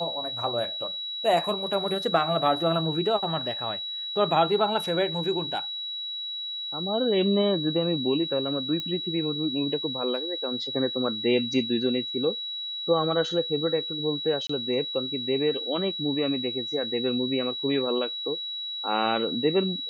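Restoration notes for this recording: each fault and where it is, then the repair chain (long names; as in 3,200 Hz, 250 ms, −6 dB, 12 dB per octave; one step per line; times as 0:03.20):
whistle 3,900 Hz −31 dBFS
0:08.80: click −18 dBFS
0:14.47–0:14.49: drop-out 24 ms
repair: click removal
notch filter 3,900 Hz, Q 30
repair the gap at 0:14.47, 24 ms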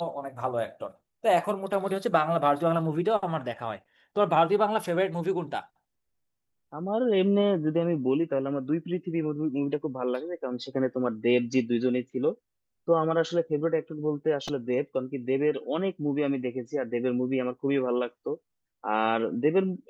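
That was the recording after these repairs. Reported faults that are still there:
none of them is left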